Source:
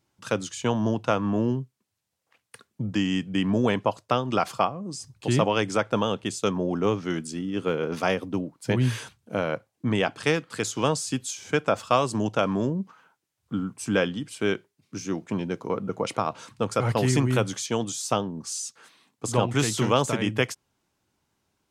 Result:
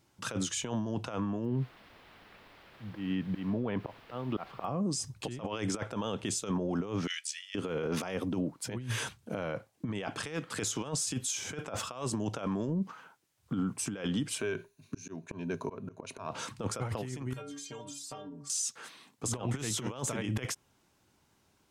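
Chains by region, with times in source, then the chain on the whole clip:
1.44–4.64 auto swell 0.488 s + added noise white -51 dBFS + air absorption 400 m
7.07–7.55 steep high-pass 1900 Hz + high shelf 8500 Hz -8 dB + comb 1.7 ms, depth 31%
14.38–16.29 ripple EQ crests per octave 1.5, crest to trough 10 dB + auto swell 0.582 s + compressor, threshold -30 dBFS
17.33–18.5 metallic resonator 140 Hz, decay 0.37 s, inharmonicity 0.008 + compressor, threshold -45 dBFS
whole clip: dynamic EQ 4500 Hz, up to -5 dB, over -55 dBFS, Q 6.6; negative-ratio compressor -29 dBFS, ratio -0.5; limiter -24 dBFS

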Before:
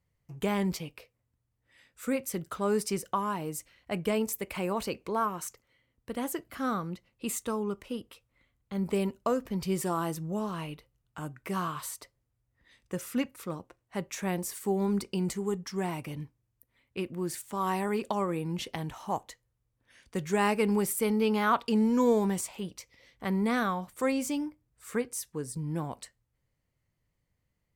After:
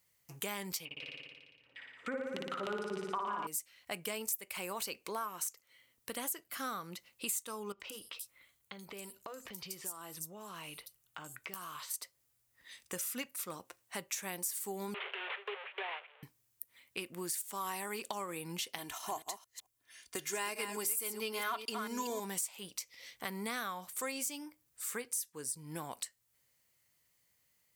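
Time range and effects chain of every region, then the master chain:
0.85–3.47 notches 50/100/150 Hz + LFO low-pass saw down 6.6 Hz 230–3200 Hz + flutter echo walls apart 9.9 m, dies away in 1.4 s
7.72–11.94 notch 240 Hz, Q 7.4 + compressor, threshold -44 dBFS + bands offset in time lows, highs 80 ms, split 4900 Hz
14.94–16.23 delta modulation 16 kbps, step -30.5 dBFS + gate with hold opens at -25 dBFS, closes at -27 dBFS + steep high-pass 400 Hz 72 dB/oct
18.78–22.2 reverse delay 0.221 s, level -8.5 dB + gate -47 dBFS, range -7 dB + comb 2.9 ms, depth 58%
whole clip: tilt +4 dB/oct; compressor 3:1, threshold -43 dBFS; gain +3 dB

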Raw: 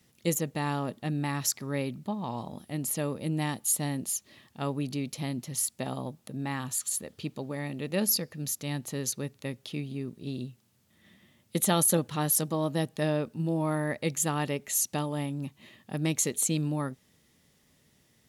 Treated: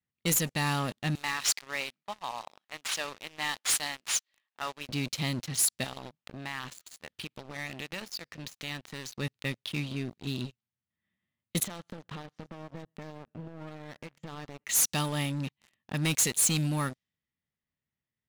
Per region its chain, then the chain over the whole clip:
1.15–4.89 CVSD 64 kbps + HPF 610 Hz
5.84–9.17 tilt shelf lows -3.5 dB, about 630 Hz + compressor, threshold -36 dBFS
11.63–14.64 tape spacing loss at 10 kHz 29 dB + compressor 10:1, threshold -37 dBFS + feedback echo 0.115 s, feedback 51%, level -17 dB
whole clip: low-pass opened by the level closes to 1800 Hz, open at -24.5 dBFS; passive tone stack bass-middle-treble 5-5-5; sample leveller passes 5

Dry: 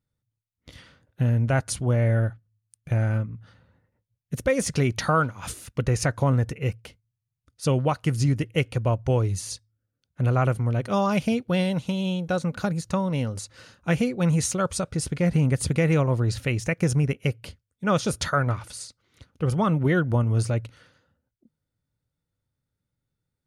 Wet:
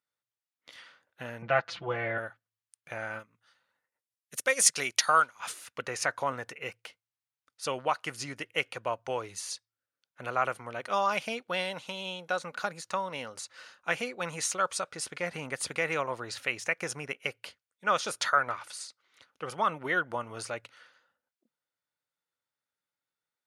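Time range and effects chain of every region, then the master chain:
1.42–2.18 LPF 4100 Hz 24 dB/oct + low shelf 170 Hz +8 dB + comb 5.9 ms, depth 95%
3.19–5.4 bell 10000 Hz +14.5 dB 2.4 oct + transient shaper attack +1 dB, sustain -3 dB + upward expander, over -31 dBFS
whole clip: HPF 1100 Hz 12 dB/oct; tilt -2.5 dB/oct; gain +3.5 dB

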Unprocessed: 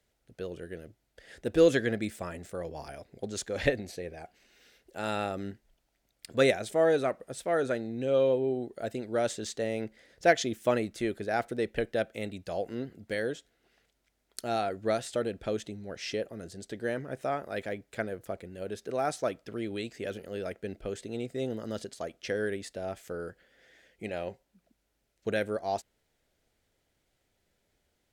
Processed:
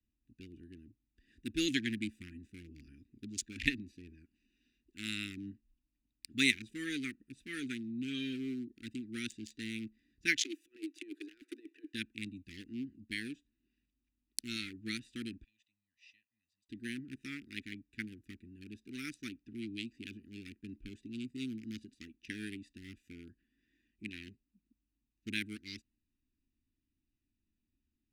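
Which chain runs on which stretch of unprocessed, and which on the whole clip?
10.43–11.94 steep high-pass 290 Hz 96 dB/oct + negative-ratio compressor -34 dBFS, ratio -0.5
15.44–16.69 elliptic high-pass 1900 Hz + tilt -2.5 dB/oct + upward expander, over -54 dBFS
whole clip: Wiener smoothing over 41 samples; elliptic band-stop 220–2200 Hz, stop band 70 dB; resonant low shelf 230 Hz -9.5 dB, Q 3; gain +5 dB

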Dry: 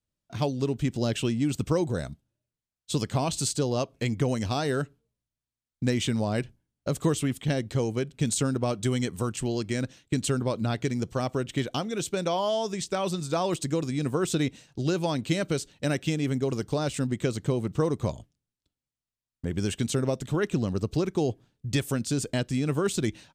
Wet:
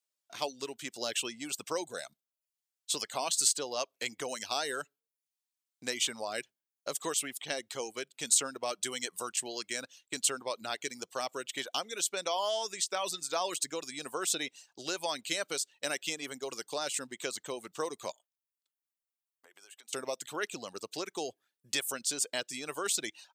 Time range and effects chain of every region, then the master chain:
18.12–19.93 HPF 690 Hz + bell 5000 Hz -9.5 dB 2.1 oct + compressor 16:1, threshold -49 dBFS
whole clip: reverb removal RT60 0.51 s; HPF 610 Hz 12 dB/oct; high shelf 3400 Hz +8.5 dB; gain -3 dB

